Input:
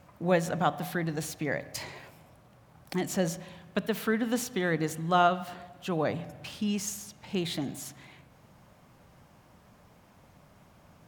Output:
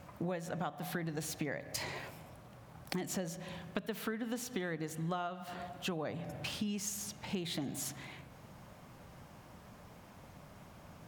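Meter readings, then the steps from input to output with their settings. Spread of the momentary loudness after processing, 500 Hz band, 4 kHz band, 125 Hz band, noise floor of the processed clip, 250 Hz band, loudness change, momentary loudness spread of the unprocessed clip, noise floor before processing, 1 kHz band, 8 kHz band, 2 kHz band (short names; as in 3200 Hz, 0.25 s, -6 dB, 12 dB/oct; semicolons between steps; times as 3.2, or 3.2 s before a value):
17 LU, -10.5 dB, -4.5 dB, -7.0 dB, -56 dBFS, -8.0 dB, -9.0 dB, 14 LU, -59 dBFS, -12.5 dB, -3.5 dB, -8.5 dB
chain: compressor 20:1, threshold -37 dBFS, peak gain reduction 20 dB; gain +3 dB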